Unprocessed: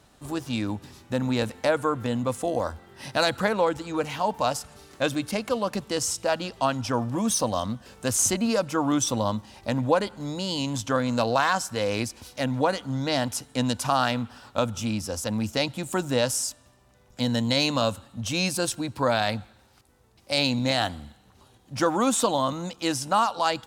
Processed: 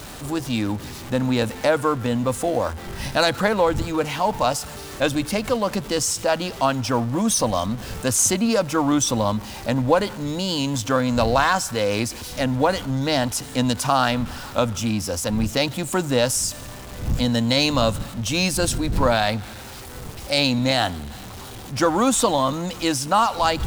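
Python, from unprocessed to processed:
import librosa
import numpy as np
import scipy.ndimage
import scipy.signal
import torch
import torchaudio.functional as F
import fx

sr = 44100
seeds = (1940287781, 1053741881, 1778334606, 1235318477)

y = x + 0.5 * 10.0 ** (-36.0 / 20.0) * np.sign(x)
y = fx.dmg_wind(y, sr, seeds[0], corner_hz=110.0, level_db=-39.0)
y = y * librosa.db_to_amplitude(3.5)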